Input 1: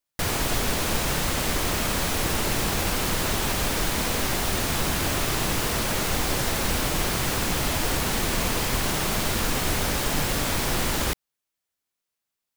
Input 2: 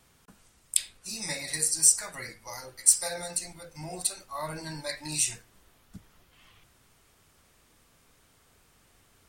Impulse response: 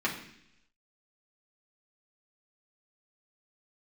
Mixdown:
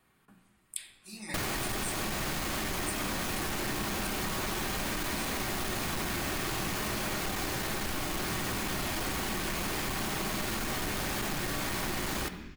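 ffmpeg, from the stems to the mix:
-filter_complex "[0:a]asoftclip=type=tanh:threshold=0.0596,adelay=1150,volume=1.12,asplit=2[s0][s1];[s1]volume=0.355[s2];[1:a]equalizer=f=5900:w=1.5:g=-10,volume=0.316,asplit=2[s3][s4];[s4]volume=0.596[s5];[2:a]atrim=start_sample=2205[s6];[s2][s5]amix=inputs=2:normalize=0[s7];[s7][s6]afir=irnorm=-1:irlink=0[s8];[s0][s3][s8]amix=inputs=3:normalize=0,bandreject=f=480:w=12,acompressor=threshold=0.0282:ratio=6"

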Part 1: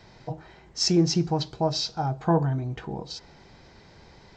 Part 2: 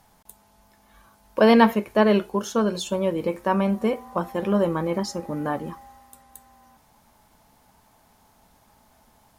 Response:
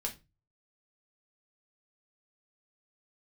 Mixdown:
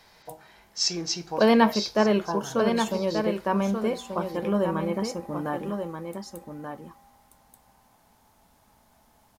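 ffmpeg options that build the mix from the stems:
-filter_complex "[0:a]highpass=f=1200:p=1,volume=0.668,asplit=3[s0][s1][s2];[s1]volume=0.668[s3];[s2]volume=0.211[s4];[1:a]volume=0.668,asplit=3[s5][s6][s7];[s6]volume=0.447[s8];[s7]apad=whole_len=192541[s9];[s0][s9]sidechaincompress=threshold=0.0355:ratio=8:attack=16:release=144[s10];[2:a]atrim=start_sample=2205[s11];[s3][s11]afir=irnorm=-1:irlink=0[s12];[s4][s8]amix=inputs=2:normalize=0,aecho=0:1:1183:1[s13];[s10][s5][s12][s13]amix=inputs=4:normalize=0"

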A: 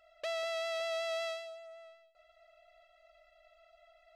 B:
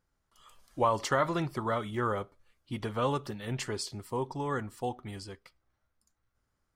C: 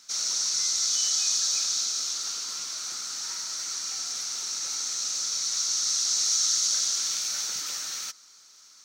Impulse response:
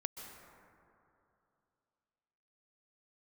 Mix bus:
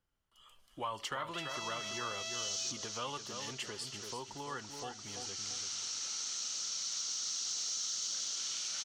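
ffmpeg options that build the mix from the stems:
-filter_complex "[0:a]alimiter=level_in=2.66:limit=0.0631:level=0:latency=1,volume=0.376,highpass=f=1400:p=1,adelay=1100,volume=0.841[s0];[1:a]volume=0.501,asplit=3[s1][s2][s3];[s2]volume=0.355[s4];[2:a]lowpass=f=8300:w=0.5412,lowpass=f=8300:w=1.3066,adelay=1400,volume=0.473[s5];[s3]apad=whole_len=451611[s6];[s5][s6]sidechaincompress=threshold=0.00355:ratio=8:attack=16:release=390[s7];[s4]aecho=0:1:336|672|1008|1344:1|0.27|0.0729|0.0197[s8];[s0][s1][s7][s8]amix=inputs=4:normalize=0,equalizer=f=3000:w=4.3:g=10.5,acrossover=split=250|850[s9][s10][s11];[s9]acompressor=threshold=0.00178:ratio=4[s12];[s10]acompressor=threshold=0.00447:ratio=4[s13];[s11]acompressor=threshold=0.0178:ratio=4[s14];[s12][s13][s14]amix=inputs=3:normalize=0,asoftclip=type=tanh:threshold=0.0631"

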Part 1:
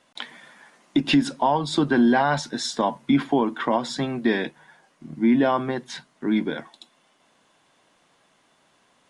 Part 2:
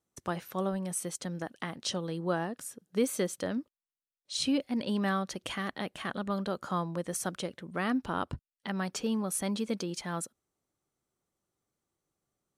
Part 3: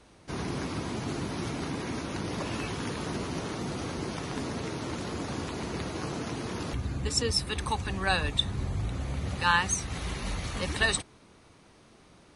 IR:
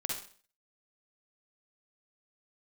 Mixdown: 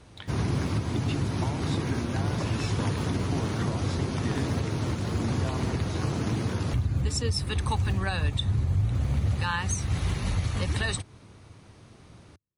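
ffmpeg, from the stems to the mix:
-filter_complex "[0:a]acompressor=threshold=0.0708:ratio=6,volume=0.299[s0];[1:a]acompressor=threshold=0.0251:ratio=2.5,acrusher=samples=40:mix=1:aa=0.000001:lfo=1:lforange=40:lforate=0.98,volume=0.224[s1];[2:a]volume=1.19[s2];[s0][s1][s2]amix=inputs=3:normalize=0,equalizer=f=99:w=1.2:g=13.5,alimiter=limit=0.133:level=0:latency=1:release=227"

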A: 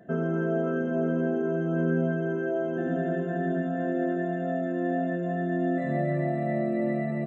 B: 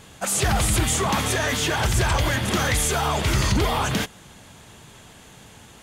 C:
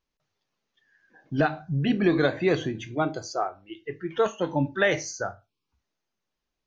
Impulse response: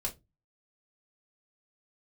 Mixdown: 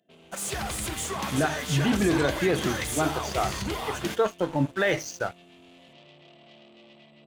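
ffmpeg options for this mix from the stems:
-filter_complex "[0:a]aeval=exprs='(tanh(39.8*val(0)+0.5)-tanh(0.5))/39.8':c=same,highpass=f=260:p=1,highshelf=f=2200:t=q:w=3:g=11,volume=0.141[s0];[1:a]lowshelf=f=100:g=-10,adelay=100,volume=0.422,asplit=2[s1][s2];[s2]volume=0.188[s3];[2:a]volume=1.33[s4];[s1][s4]amix=inputs=2:normalize=0,aeval=exprs='sgn(val(0))*max(abs(val(0))-0.0119,0)':c=same,alimiter=limit=0.188:level=0:latency=1:release=22,volume=1[s5];[3:a]atrim=start_sample=2205[s6];[s3][s6]afir=irnorm=-1:irlink=0[s7];[s0][s5][s7]amix=inputs=3:normalize=0"

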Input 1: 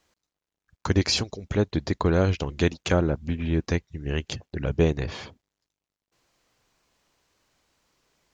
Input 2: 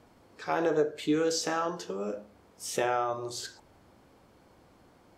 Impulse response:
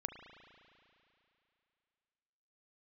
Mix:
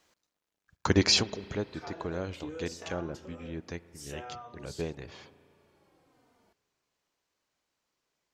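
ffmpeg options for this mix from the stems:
-filter_complex "[0:a]volume=0.891,afade=t=out:st=1.24:d=0.43:silence=0.223872,asplit=2[s0][s1];[s1]volume=0.376[s2];[1:a]acompressor=threshold=0.0112:ratio=2,asplit=2[s3][s4];[s4]adelay=3.2,afreqshift=-1.1[s5];[s3][s5]amix=inputs=2:normalize=1,adelay=1350,volume=0.631[s6];[2:a]atrim=start_sample=2205[s7];[s2][s7]afir=irnorm=-1:irlink=0[s8];[s0][s6][s8]amix=inputs=3:normalize=0,lowshelf=f=120:g=-9.5"

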